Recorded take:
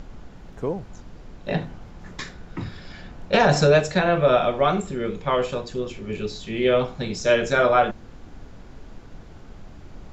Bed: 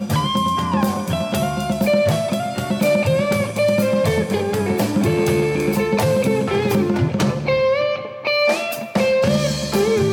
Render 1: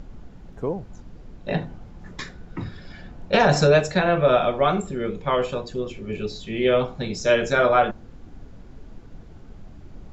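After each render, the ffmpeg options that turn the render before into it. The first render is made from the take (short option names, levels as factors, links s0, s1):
-af "afftdn=nr=6:nf=-44"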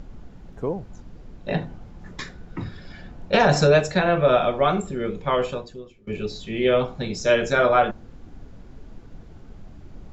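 -filter_complex "[0:a]asplit=2[s0][s1];[s0]atrim=end=6.07,asetpts=PTS-STARTPTS,afade=t=out:st=5.49:d=0.58:c=qua:silence=0.0891251[s2];[s1]atrim=start=6.07,asetpts=PTS-STARTPTS,afade=t=in:d=0.004:c=hsin:silence=0.0891251[s3];[s2][s3]concat=n=2:v=0:a=1"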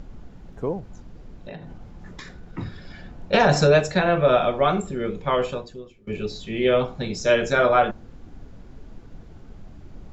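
-filter_complex "[0:a]asettb=1/sr,asplit=3[s0][s1][s2];[s0]atrim=end=0.804[s3];[s1]atrim=start=0.8:end=2.58,asetpts=PTS-STARTPTS,afade=t=in:d=0.004:c=qsin,afade=t=out:st=1.776:d=0.004:c=qsin,acompressor=threshold=0.02:ratio=6:attack=3.2:release=140:knee=1:detection=peak[s4];[s2]atrim=start=2.576[s5];[s3][s4]acrossfade=d=0.004:c1=hsin:c2=qsin[s6];[s6][s5]acrossfade=d=0.004:c1=qsin:c2=hsin"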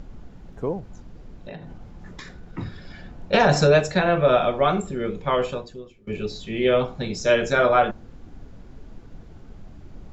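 -af anull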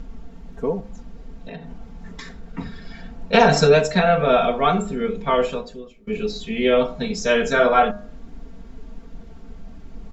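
-af "aecho=1:1:4.4:0.98,bandreject=f=102.5:t=h:w=4,bandreject=f=205:t=h:w=4,bandreject=f=307.5:t=h:w=4,bandreject=f=410:t=h:w=4,bandreject=f=512.5:t=h:w=4,bandreject=f=615:t=h:w=4,bandreject=f=717.5:t=h:w=4,bandreject=f=820:t=h:w=4,bandreject=f=922.5:t=h:w=4,bandreject=f=1025:t=h:w=4,bandreject=f=1127.5:t=h:w=4,bandreject=f=1230:t=h:w=4,bandreject=f=1332.5:t=h:w=4,bandreject=f=1435:t=h:w=4,bandreject=f=1537.5:t=h:w=4,bandreject=f=1640:t=h:w=4"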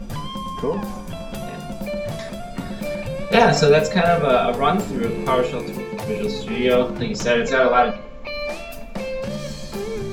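-filter_complex "[1:a]volume=0.282[s0];[0:a][s0]amix=inputs=2:normalize=0"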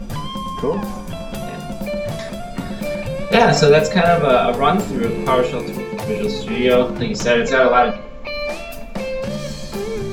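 -af "volume=1.41,alimiter=limit=0.794:level=0:latency=1"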